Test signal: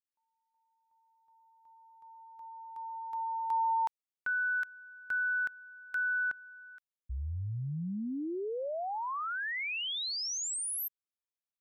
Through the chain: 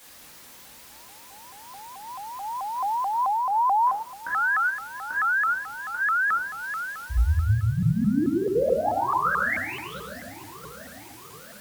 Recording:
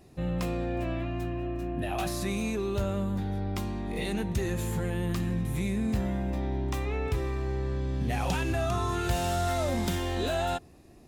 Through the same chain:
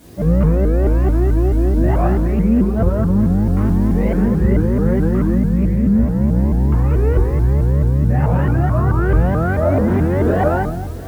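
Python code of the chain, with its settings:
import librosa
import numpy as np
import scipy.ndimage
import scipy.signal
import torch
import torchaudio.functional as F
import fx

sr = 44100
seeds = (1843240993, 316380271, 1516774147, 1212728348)

y = scipy.signal.sosfilt(scipy.signal.butter(4, 1500.0, 'lowpass', fs=sr, output='sos'), x)
y = fx.peak_eq(y, sr, hz=850.0, db=-4.0, octaves=0.87)
y = fx.echo_feedback(y, sr, ms=696, feedback_pct=58, wet_db=-20.0)
y = fx.dmg_noise_colour(y, sr, seeds[0], colour='white', level_db=-63.0)
y = scipy.signal.sosfilt(scipy.signal.butter(2, 47.0, 'highpass', fs=sr, output='sos'), y)
y = fx.room_shoebox(y, sr, seeds[1], volume_m3=160.0, walls='mixed', distance_m=2.3)
y = fx.rider(y, sr, range_db=4, speed_s=0.5)
y = fx.vibrato_shape(y, sr, shape='saw_up', rate_hz=4.6, depth_cents=250.0)
y = F.gain(torch.from_numpy(y), 4.5).numpy()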